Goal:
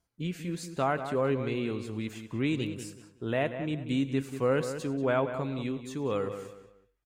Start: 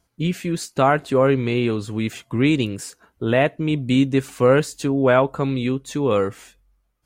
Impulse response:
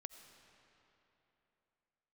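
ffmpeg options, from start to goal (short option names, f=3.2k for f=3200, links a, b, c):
-filter_complex "[0:a]asplit=2[a][b];[b]adelay=187,lowpass=f=3.2k:p=1,volume=-9.5dB,asplit=2[c][d];[d]adelay=187,lowpass=f=3.2k:p=1,volume=0.3,asplit=2[e][f];[f]adelay=187,lowpass=f=3.2k:p=1,volume=0.3[g];[a][c][e][g]amix=inputs=4:normalize=0[h];[1:a]atrim=start_sample=2205,afade=t=out:st=0.14:d=0.01,atrim=end_sample=6615,asetrate=36162,aresample=44100[i];[h][i]afir=irnorm=-1:irlink=0,volume=-6.5dB"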